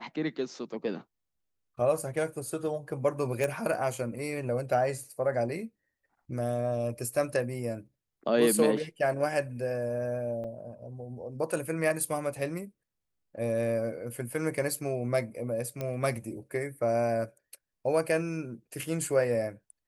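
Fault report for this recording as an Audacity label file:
3.440000	3.440000	pop
10.440000	10.450000	gap 5.3 ms
15.810000	15.810000	pop -20 dBFS

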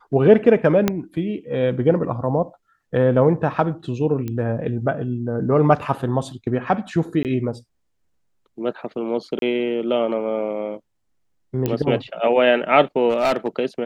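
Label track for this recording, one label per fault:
0.880000	0.880000	pop -4 dBFS
4.280000	4.280000	pop -16 dBFS
7.230000	7.250000	gap 18 ms
9.390000	9.420000	gap 32 ms
11.660000	11.660000	pop -9 dBFS
13.090000	13.480000	clipped -14 dBFS

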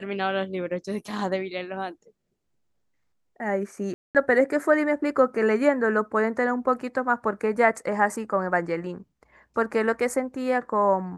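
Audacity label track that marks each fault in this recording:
3.940000	4.150000	gap 0.208 s

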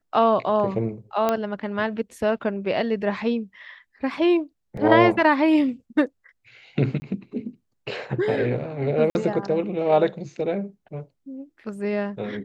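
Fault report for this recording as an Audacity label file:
1.290000	1.290000	pop -9 dBFS
4.770000	4.770000	gap 3.7 ms
7.000000	7.020000	gap 20 ms
9.100000	9.150000	gap 51 ms

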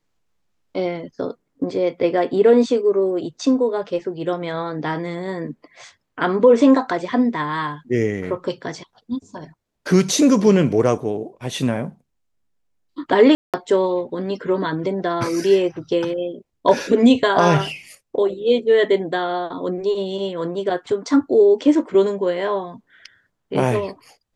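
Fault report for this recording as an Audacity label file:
13.350000	13.540000	gap 0.187 s

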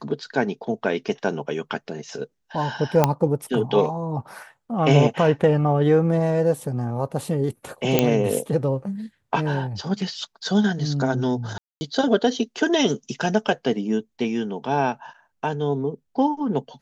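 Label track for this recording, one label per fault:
3.040000	3.040000	pop -3 dBFS
7.990000	7.990000	pop -2 dBFS
11.580000	11.810000	gap 0.23 s

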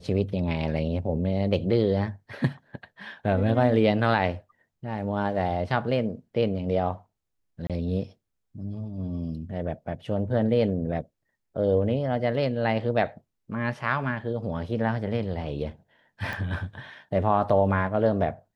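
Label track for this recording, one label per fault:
7.670000	7.700000	gap 27 ms
16.330000	16.330000	pop -20 dBFS

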